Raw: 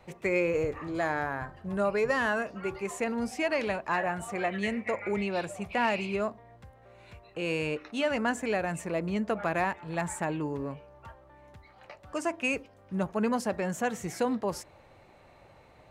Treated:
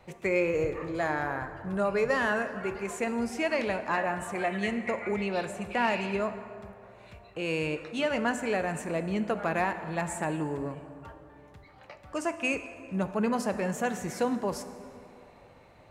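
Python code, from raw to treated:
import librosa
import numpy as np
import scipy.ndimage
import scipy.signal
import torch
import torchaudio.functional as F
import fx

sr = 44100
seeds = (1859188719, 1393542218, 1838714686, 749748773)

y = fx.rev_plate(x, sr, seeds[0], rt60_s=2.6, hf_ratio=0.55, predelay_ms=0, drr_db=9.5)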